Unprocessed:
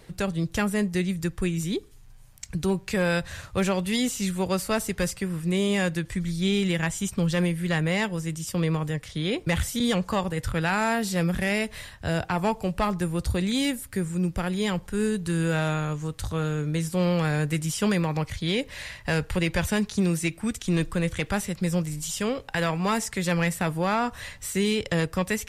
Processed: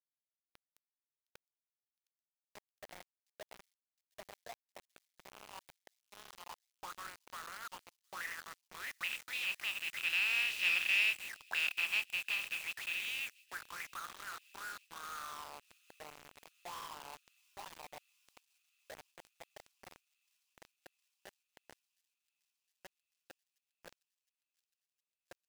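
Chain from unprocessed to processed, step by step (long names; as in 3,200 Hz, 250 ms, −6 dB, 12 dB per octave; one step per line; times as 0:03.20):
compressing power law on the bin magnitudes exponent 0.33
source passing by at 0:11.02, 17 m/s, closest 15 metres
notch filter 2,200 Hz, Q 29
envelope filter 390–2,600 Hz, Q 11, up, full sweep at −29.5 dBFS
bit reduction 9 bits
on a send: delay with a high-pass on its return 712 ms, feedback 76%, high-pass 4,500 Hz, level −22 dB
on the sum: level +7 dB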